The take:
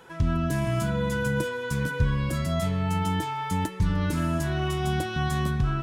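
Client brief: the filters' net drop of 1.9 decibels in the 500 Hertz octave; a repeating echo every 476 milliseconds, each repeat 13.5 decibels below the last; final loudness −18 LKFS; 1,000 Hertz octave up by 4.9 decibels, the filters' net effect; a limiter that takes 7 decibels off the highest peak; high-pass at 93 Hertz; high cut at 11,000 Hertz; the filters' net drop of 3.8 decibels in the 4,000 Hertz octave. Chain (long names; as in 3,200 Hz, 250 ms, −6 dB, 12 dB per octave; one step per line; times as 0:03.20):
high-pass filter 93 Hz
low-pass filter 11,000 Hz
parametric band 500 Hz −5 dB
parametric band 1,000 Hz +8 dB
parametric band 4,000 Hz −6 dB
brickwall limiter −19.5 dBFS
repeating echo 476 ms, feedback 21%, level −13.5 dB
level +10.5 dB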